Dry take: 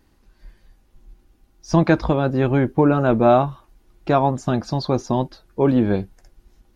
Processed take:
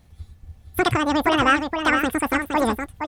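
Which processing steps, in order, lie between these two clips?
bell 240 Hz -8.5 dB 1.5 oct; wide varispeed 2.2×; in parallel at -1 dB: limiter -14.5 dBFS, peak gain reduction 7.5 dB; on the sum: low shelf 490 Hz +5.5 dB; on a send: echo 0.467 s -6.5 dB; on the sum: gain -4.5 dB

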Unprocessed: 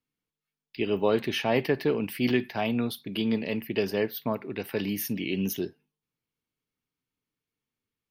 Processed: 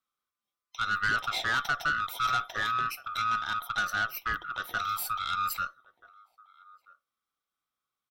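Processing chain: band-swap scrambler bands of 1000 Hz; outdoor echo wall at 220 m, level -22 dB; tube stage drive 21 dB, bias 0.35

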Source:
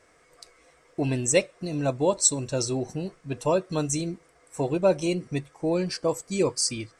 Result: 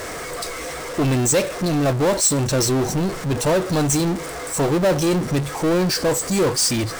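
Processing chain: power-law curve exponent 0.35; bell 2600 Hz -3 dB; gain -3.5 dB

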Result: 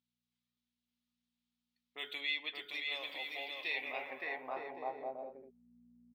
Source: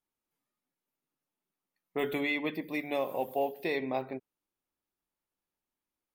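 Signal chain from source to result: buzz 60 Hz, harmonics 4, -62 dBFS -1 dB/oct; bouncing-ball echo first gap 0.57 s, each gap 0.6×, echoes 5; band-pass sweep 3700 Hz -> 330 Hz, 3.52–5.76; gain +4.5 dB

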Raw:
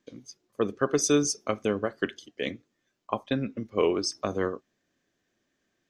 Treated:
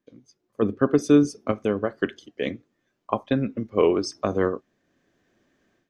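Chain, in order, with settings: 0.62–1.52 fifteen-band EQ 100 Hz +8 dB, 250 Hz +8 dB, 6300 Hz -7 dB; AGC gain up to 16 dB; high shelf 2600 Hz -10 dB; gain -4.5 dB

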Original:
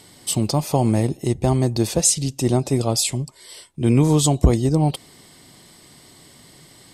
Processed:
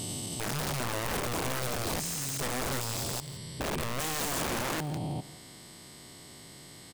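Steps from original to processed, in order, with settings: stepped spectrum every 0.4 s; wrapped overs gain 20 dB; limiter -27 dBFS, peak gain reduction 7 dB; echo 0.168 s -18 dB

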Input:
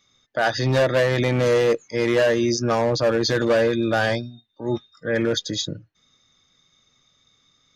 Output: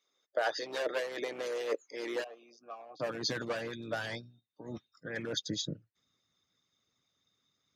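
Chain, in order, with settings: high-pass sweep 430 Hz -> 110 Hz, 1.78–3.39; harmonic-percussive split harmonic -17 dB; 2.24–3 vowel filter a; gain -9 dB

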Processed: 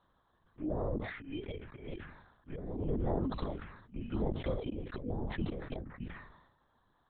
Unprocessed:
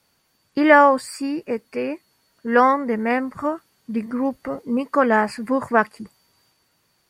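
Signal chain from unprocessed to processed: FFT order left unsorted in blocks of 16 samples; treble ducked by the level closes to 380 Hz, closed at -13 dBFS; 2.75–4.79 dynamic EQ 2600 Hz, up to -6 dB, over -41 dBFS, Q 1.1; auto swell 0.678 s; compressor 3:1, threshold -33 dBFS, peak gain reduction 10.5 dB; envelope phaser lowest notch 400 Hz, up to 2700 Hz, full sweep at -31.5 dBFS; LPC vocoder at 8 kHz whisper; sustainer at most 63 dB/s; gain +1 dB

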